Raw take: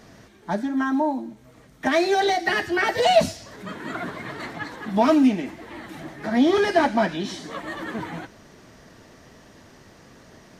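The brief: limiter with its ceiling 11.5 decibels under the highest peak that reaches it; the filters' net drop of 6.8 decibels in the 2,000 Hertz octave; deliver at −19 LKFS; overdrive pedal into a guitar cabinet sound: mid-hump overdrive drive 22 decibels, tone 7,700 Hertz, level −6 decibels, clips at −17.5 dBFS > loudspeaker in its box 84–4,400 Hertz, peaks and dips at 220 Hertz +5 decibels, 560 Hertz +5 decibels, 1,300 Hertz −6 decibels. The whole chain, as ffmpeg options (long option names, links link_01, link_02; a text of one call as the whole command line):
ffmpeg -i in.wav -filter_complex "[0:a]equalizer=frequency=2000:width_type=o:gain=-7,alimiter=limit=-17.5dB:level=0:latency=1,asplit=2[link_01][link_02];[link_02]highpass=frequency=720:poles=1,volume=22dB,asoftclip=type=tanh:threshold=-17.5dB[link_03];[link_01][link_03]amix=inputs=2:normalize=0,lowpass=frequency=7700:poles=1,volume=-6dB,highpass=84,equalizer=frequency=220:width_type=q:width=4:gain=5,equalizer=frequency=560:width_type=q:width=4:gain=5,equalizer=frequency=1300:width_type=q:width=4:gain=-6,lowpass=frequency=4400:width=0.5412,lowpass=frequency=4400:width=1.3066,volume=5dB" out.wav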